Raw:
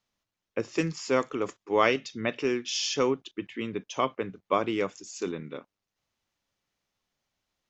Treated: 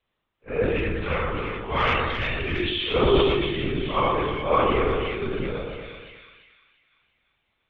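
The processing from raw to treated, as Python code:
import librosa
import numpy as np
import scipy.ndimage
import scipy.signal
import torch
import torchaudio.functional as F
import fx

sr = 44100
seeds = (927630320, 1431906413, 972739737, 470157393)

y = fx.phase_scramble(x, sr, seeds[0], window_ms=200)
y = fx.lpc_vocoder(y, sr, seeds[1], excitation='whisper', order=16)
y = 10.0 ** (-12.5 / 20.0) * np.tanh(y / 10.0 ** (-12.5 / 20.0))
y = fx.peak_eq(y, sr, hz=410.0, db=-9.5, octaves=2.4, at=(0.78, 2.6))
y = fx.echo_split(y, sr, split_hz=1800.0, low_ms=119, high_ms=342, feedback_pct=52, wet_db=-5.0)
y = fx.sustainer(y, sr, db_per_s=29.0)
y = y * librosa.db_to_amplitude(5.5)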